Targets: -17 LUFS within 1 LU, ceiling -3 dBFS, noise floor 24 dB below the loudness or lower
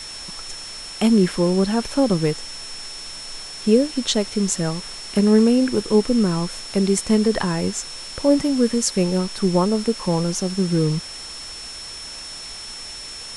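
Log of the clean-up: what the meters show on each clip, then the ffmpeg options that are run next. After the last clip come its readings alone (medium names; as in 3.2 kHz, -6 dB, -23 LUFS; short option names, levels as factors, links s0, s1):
steady tone 5.4 kHz; tone level -34 dBFS; noise floor -35 dBFS; noise floor target -44 dBFS; loudness -20.0 LUFS; peak level -4.5 dBFS; loudness target -17.0 LUFS
-> -af "bandreject=f=5400:w=30"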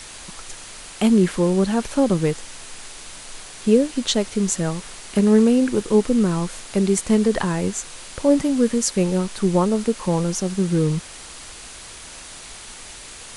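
steady tone not found; noise floor -39 dBFS; noise floor target -44 dBFS
-> -af "afftdn=nr=6:nf=-39"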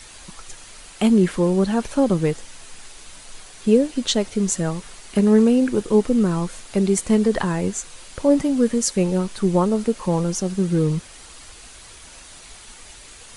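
noise floor -43 dBFS; noise floor target -44 dBFS
-> -af "afftdn=nr=6:nf=-43"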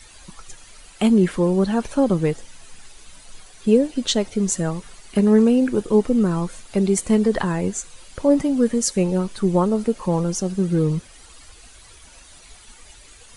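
noise floor -47 dBFS; loudness -20.5 LUFS; peak level -5.0 dBFS; loudness target -17.0 LUFS
-> -af "volume=1.5,alimiter=limit=0.708:level=0:latency=1"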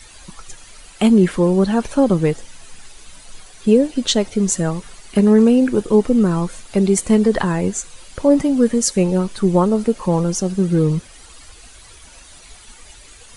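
loudness -17.0 LUFS; peak level -3.0 dBFS; noise floor -43 dBFS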